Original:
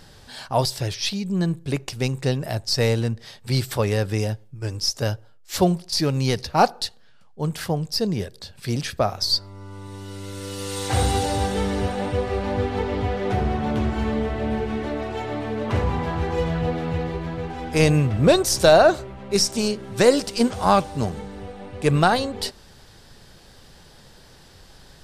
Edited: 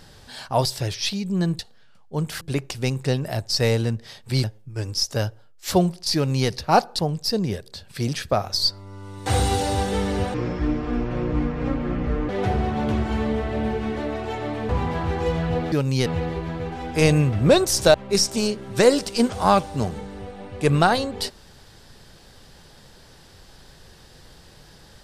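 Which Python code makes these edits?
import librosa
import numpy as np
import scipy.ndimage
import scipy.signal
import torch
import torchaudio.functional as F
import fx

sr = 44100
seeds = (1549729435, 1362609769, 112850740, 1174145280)

y = fx.edit(x, sr, fx.cut(start_s=3.62, length_s=0.68),
    fx.duplicate(start_s=6.01, length_s=0.34, to_s=16.84),
    fx.move(start_s=6.85, length_s=0.82, to_s=1.59),
    fx.cut(start_s=9.94, length_s=0.95),
    fx.speed_span(start_s=11.97, length_s=1.19, speed=0.61),
    fx.cut(start_s=15.56, length_s=0.25),
    fx.cut(start_s=18.72, length_s=0.43), tone=tone)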